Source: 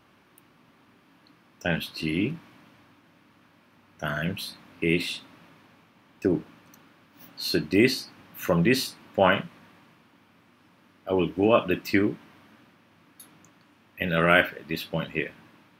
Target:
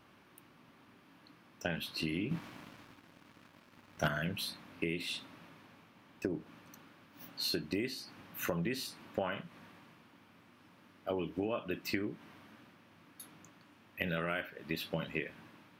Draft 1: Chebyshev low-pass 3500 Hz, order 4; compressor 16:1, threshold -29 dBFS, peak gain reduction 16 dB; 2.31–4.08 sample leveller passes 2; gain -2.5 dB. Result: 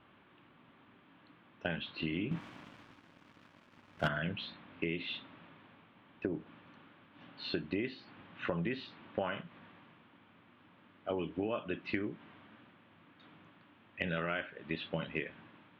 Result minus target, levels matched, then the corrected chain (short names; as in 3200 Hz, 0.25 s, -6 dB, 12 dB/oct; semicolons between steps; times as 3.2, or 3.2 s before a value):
4000 Hz band -3.0 dB
compressor 16:1, threshold -29 dBFS, peak gain reduction 16.5 dB; 2.31–4.08 sample leveller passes 2; gain -2.5 dB